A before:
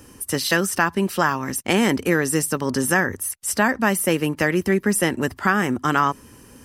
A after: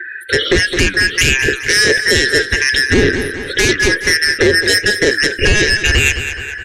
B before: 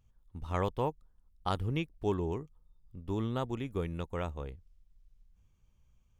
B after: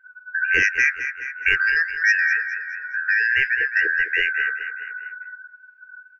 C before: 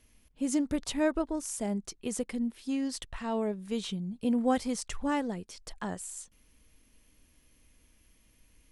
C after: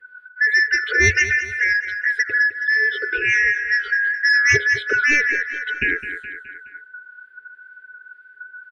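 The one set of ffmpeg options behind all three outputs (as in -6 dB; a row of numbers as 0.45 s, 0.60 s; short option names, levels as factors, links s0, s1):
-filter_complex "[0:a]afftfilt=real='real(if(lt(b,272),68*(eq(floor(b/68),0)*1+eq(floor(b/68),1)*0+eq(floor(b/68),2)*3+eq(floor(b/68),3)*2)+mod(b,68),b),0)':imag='imag(if(lt(b,272),68*(eq(floor(b/68),0)*1+eq(floor(b/68),1)*0+eq(floor(b/68),2)*3+eq(floor(b/68),3)*2)+mod(b,68),b),0)':win_size=2048:overlap=0.75,firequalizer=gain_entry='entry(110,0);entry(170,-10);entry(280,-3);entry(440,10);entry(770,-24);entry(1500,5);entry(3300,-1);entry(6100,-28);entry(9800,-24)':delay=0.05:min_phase=1,asoftclip=type=tanh:threshold=0.112,acrossover=split=2000[s0][s1];[s0]aeval=exprs='val(0)*(1-0.5/2+0.5/2*cos(2*PI*2*n/s))':c=same[s2];[s1]aeval=exprs='val(0)*(1-0.5/2-0.5/2*cos(2*PI*2*n/s))':c=same[s3];[s2][s3]amix=inputs=2:normalize=0,flanger=delay=5.3:depth=6.9:regen=81:speed=1.4:shape=sinusoidal,afftdn=nr=20:nf=-51,lowshelf=f=210:g=3.5,asplit=2[s4][s5];[s5]aecho=0:1:210|420|630|840:0.237|0.102|0.0438|0.0189[s6];[s4][s6]amix=inputs=2:normalize=0,acrossover=split=480|3000[s7][s8][s9];[s8]acompressor=threshold=0.00224:ratio=2[s10];[s7][s10][s9]amix=inputs=3:normalize=0,alimiter=level_in=21.1:limit=0.891:release=50:level=0:latency=1,volume=0.891"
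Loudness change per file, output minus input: +8.5 LU, +16.0 LU, +15.5 LU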